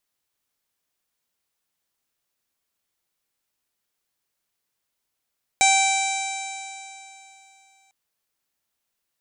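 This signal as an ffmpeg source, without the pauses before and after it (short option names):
-f lavfi -i "aevalsrc='0.141*pow(10,-3*t/3.01)*sin(2*PI*776.18*t)+0.0178*pow(10,-3*t/3.01)*sin(2*PI*1553.46*t)+0.126*pow(10,-3*t/3.01)*sin(2*PI*2332.92*t)+0.0178*pow(10,-3*t/3.01)*sin(2*PI*3115.65*t)+0.0668*pow(10,-3*t/3.01)*sin(2*PI*3902.73*t)+0.0158*pow(10,-3*t/3.01)*sin(2*PI*4695.22*t)+0.0282*pow(10,-3*t/3.01)*sin(2*PI*5494.19*t)+0.0531*pow(10,-3*t/3.01)*sin(2*PI*6300.68*t)+0.075*pow(10,-3*t/3.01)*sin(2*PI*7115.7*t)+0.0562*pow(10,-3*t/3.01)*sin(2*PI*7940.27*t)+0.0178*pow(10,-3*t/3.01)*sin(2*PI*8775.37*t)+0.0178*pow(10,-3*t/3.01)*sin(2*PI*9621.96*t)':d=2.3:s=44100"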